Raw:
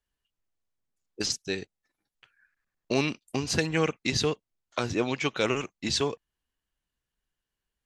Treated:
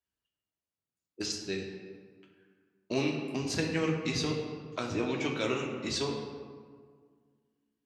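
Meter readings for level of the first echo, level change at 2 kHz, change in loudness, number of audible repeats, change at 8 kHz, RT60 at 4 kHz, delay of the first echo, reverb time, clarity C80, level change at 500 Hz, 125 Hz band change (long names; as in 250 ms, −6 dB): no echo audible, −5.0 dB, −4.0 dB, no echo audible, −6.0 dB, 1.0 s, no echo audible, 1.8 s, 5.5 dB, −3.5 dB, −3.0 dB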